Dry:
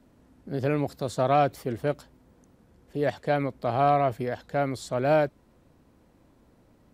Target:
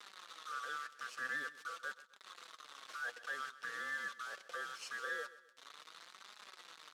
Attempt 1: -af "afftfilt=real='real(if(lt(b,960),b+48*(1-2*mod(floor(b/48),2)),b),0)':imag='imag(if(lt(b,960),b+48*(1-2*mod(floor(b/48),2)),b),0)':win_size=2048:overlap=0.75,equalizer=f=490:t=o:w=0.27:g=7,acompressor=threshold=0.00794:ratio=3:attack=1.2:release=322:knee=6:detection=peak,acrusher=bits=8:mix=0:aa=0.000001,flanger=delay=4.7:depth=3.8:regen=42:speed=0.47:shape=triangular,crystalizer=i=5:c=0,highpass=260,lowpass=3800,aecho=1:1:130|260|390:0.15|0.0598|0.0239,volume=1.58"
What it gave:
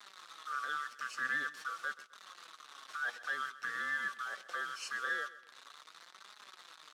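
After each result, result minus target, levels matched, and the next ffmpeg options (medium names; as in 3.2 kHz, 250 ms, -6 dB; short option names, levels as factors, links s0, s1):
500 Hz band -6.5 dB; compression: peak gain reduction -6 dB
-af "afftfilt=real='real(if(lt(b,960),b+48*(1-2*mod(floor(b/48),2)),b),0)':imag='imag(if(lt(b,960),b+48*(1-2*mod(floor(b/48),2)),b),0)':win_size=2048:overlap=0.75,equalizer=f=490:t=o:w=0.27:g=17.5,acompressor=threshold=0.00794:ratio=3:attack=1.2:release=322:knee=6:detection=peak,acrusher=bits=8:mix=0:aa=0.000001,flanger=delay=4.7:depth=3.8:regen=42:speed=0.47:shape=triangular,crystalizer=i=5:c=0,highpass=260,lowpass=3800,aecho=1:1:130|260|390:0.15|0.0598|0.0239,volume=1.58"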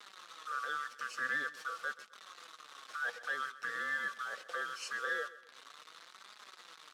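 compression: peak gain reduction -5 dB
-af "afftfilt=real='real(if(lt(b,960),b+48*(1-2*mod(floor(b/48),2)),b),0)':imag='imag(if(lt(b,960),b+48*(1-2*mod(floor(b/48),2)),b),0)':win_size=2048:overlap=0.75,equalizer=f=490:t=o:w=0.27:g=17.5,acompressor=threshold=0.00335:ratio=3:attack=1.2:release=322:knee=6:detection=peak,acrusher=bits=8:mix=0:aa=0.000001,flanger=delay=4.7:depth=3.8:regen=42:speed=0.47:shape=triangular,crystalizer=i=5:c=0,highpass=260,lowpass=3800,aecho=1:1:130|260|390:0.15|0.0598|0.0239,volume=1.58"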